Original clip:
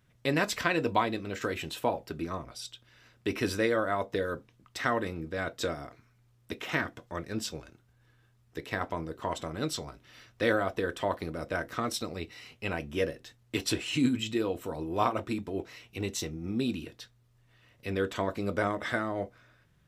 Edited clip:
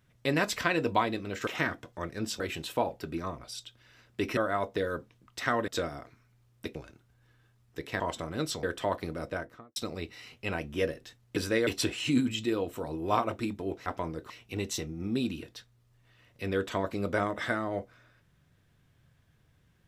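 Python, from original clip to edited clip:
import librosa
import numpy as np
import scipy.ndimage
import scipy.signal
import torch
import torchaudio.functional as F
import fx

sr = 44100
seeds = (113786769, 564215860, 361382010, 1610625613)

y = fx.studio_fade_out(x, sr, start_s=11.38, length_s=0.57)
y = fx.edit(y, sr, fx.move(start_s=3.44, length_s=0.31, to_s=13.55),
    fx.cut(start_s=5.06, length_s=0.48),
    fx.move(start_s=6.61, length_s=0.93, to_s=1.47),
    fx.move(start_s=8.79, length_s=0.44, to_s=15.74),
    fx.cut(start_s=9.86, length_s=0.96), tone=tone)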